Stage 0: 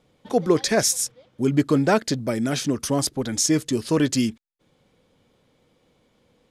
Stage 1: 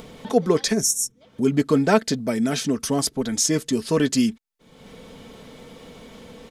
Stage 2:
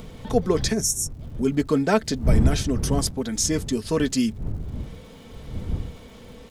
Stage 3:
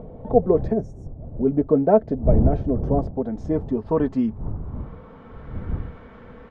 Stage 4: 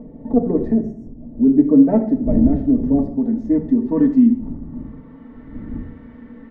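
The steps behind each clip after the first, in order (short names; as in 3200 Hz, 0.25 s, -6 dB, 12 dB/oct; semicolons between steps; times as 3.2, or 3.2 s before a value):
spectral gain 0.73–1.21, 450–5400 Hz -17 dB; comb 4.5 ms, depth 45%; upward compressor, threshold -26 dBFS
wind noise 110 Hz -25 dBFS; crackle 250/s -44 dBFS; gain -2.5 dB
low-pass sweep 650 Hz -> 1500 Hz, 3.03–5.63
tracing distortion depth 0.027 ms; small resonant body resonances 260/1900 Hz, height 17 dB, ringing for 35 ms; reverb RT60 0.60 s, pre-delay 3 ms, DRR 0.5 dB; gain -10 dB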